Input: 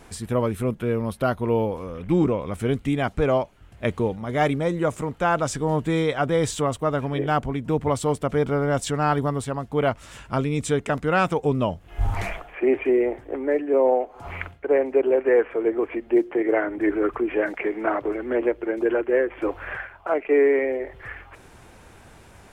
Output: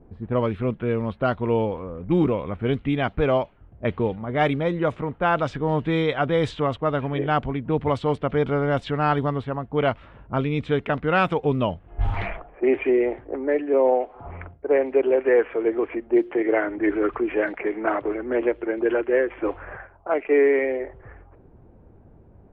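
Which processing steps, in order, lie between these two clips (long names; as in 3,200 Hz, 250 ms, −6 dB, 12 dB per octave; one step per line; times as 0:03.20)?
low-pass that shuts in the quiet parts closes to 400 Hz, open at −16 dBFS
high shelf with overshoot 4,900 Hz −11.5 dB, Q 1.5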